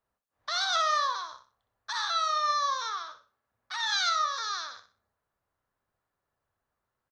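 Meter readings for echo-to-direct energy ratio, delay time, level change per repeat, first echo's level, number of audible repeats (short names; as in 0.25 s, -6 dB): -9.5 dB, 62 ms, -11.0 dB, -10.0 dB, 3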